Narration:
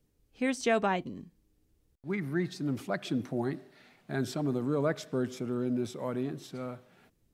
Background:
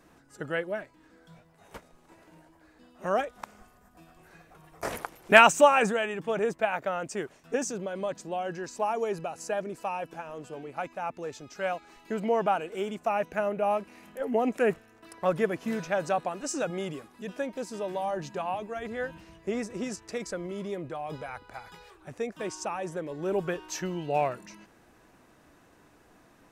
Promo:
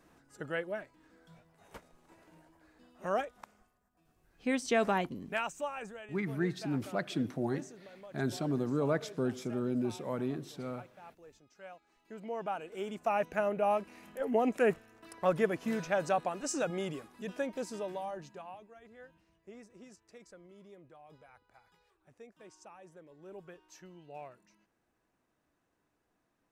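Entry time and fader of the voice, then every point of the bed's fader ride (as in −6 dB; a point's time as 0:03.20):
4.05 s, −1.5 dB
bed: 0:03.18 −5 dB
0:03.88 −19 dB
0:11.84 −19 dB
0:13.14 −2.5 dB
0:17.69 −2.5 dB
0:18.78 −20 dB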